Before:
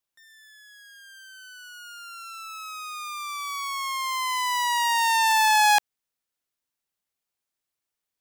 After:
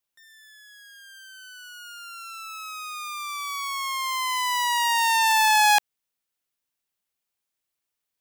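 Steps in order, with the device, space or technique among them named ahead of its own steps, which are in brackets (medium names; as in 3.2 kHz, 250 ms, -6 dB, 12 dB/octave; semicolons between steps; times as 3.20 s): presence and air boost (peaking EQ 2.8 kHz +2 dB; treble shelf 10 kHz +3.5 dB)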